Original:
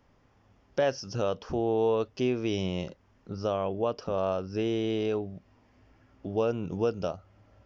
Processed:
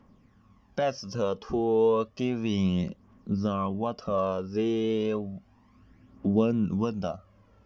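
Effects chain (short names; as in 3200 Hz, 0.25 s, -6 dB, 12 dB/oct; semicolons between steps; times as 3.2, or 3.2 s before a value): small resonant body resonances 210/1100 Hz, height 12 dB, ringing for 50 ms; phaser 0.32 Hz, delay 2.6 ms, feedback 52%; gain -2.5 dB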